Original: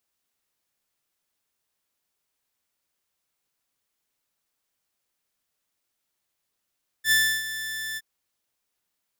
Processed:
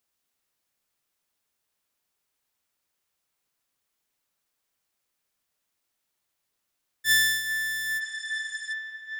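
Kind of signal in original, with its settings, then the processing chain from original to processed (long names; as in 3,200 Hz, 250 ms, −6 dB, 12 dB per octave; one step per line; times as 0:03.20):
note with an ADSR envelope saw 1,760 Hz, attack 74 ms, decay 308 ms, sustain −13.5 dB, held 0.93 s, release 39 ms −14 dBFS
healed spectral selection 0:08.04–0:08.70, 1,400–9,700 Hz before
on a send: delay with a band-pass on its return 404 ms, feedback 81%, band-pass 1,300 Hz, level −11 dB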